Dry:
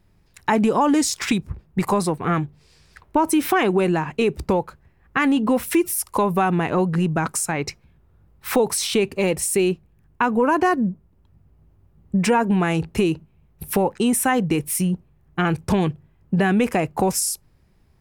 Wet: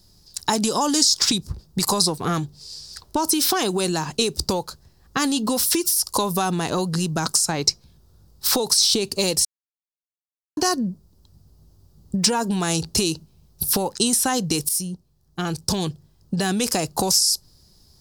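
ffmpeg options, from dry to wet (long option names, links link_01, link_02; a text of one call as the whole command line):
ffmpeg -i in.wav -filter_complex "[0:a]asplit=4[link_01][link_02][link_03][link_04];[link_01]atrim=end=9.45,asetpts=PTS-STARTPTS,afade=type=out:start_time=9.446:duration=0.004:curve=hsin[link_05];[link_02]atrim=start=9.45:end=10.57,asetpts=PTS-STARTPTS,volume=0[link_06];[link_03]atrim=start=10.57:end=14.69,asetpts=PTS-STARTPTS,afade=type=in:duration=0.004:curve=hsin,afade=type=out:start_time=4.116:duration=0.004:curve=hsin:silence=0.199526[link_07];[link_04]atrim=start=14.69,asetpts=PTS-STARTPTS,afade=type=in:duration=2.09:silence=0.199526[link_08];[link_05][link_06][link_07][link_08]concat=n=4:v=0:a=1,acrossover=split=5000[link_09][link_10];[link_10]acompressor=threshold=-29dB:ratio=4:attack=1:release=60[link_11];[link_09][link_11]amix=inputs=2:normalize=0,highshelf=frequency=3300:width_type=q:width=3:gain=13.5,acrossover=split=1100|3600[link_12][link_13][link_14];[link_12]acompressor=threshold=-24dB:ratio=4[link_15];[link_13]acompressor=threshold=-28dB:ratio=4[link_16];[link_14]acompressor=threshold=-21dB:ratio=4[link_17];[link_15][link_16][link_17]amix=inputs=3:normalize=0,volume=2dB" out.wav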